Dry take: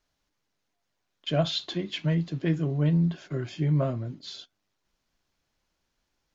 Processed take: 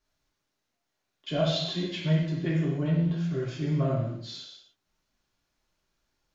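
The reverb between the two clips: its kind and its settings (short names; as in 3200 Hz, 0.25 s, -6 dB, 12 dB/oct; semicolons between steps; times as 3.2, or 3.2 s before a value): non-linear reverb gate 0.32 s falling, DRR -4.5 dB; gain -5.5 dB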